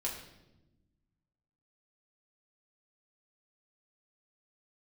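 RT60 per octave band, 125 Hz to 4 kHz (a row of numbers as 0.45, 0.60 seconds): 2.0, 1.8, 1.2, 0.80, 0.80, 0.80 seconds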